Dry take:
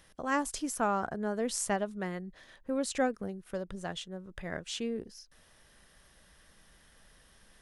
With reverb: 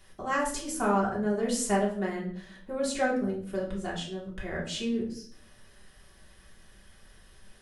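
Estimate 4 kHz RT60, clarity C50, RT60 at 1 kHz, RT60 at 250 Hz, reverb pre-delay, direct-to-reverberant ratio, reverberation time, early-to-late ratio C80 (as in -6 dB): 0.45 s, 6.5 dB, 0.45 s, 0.85 s, 3 ms, -6.0 dB, 0.55 s, 11.0 dB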